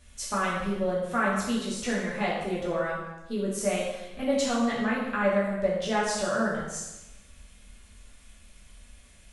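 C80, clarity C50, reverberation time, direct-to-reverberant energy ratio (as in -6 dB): 4.0 dB, 1.5 dB, 0.95 s, -6.5 dB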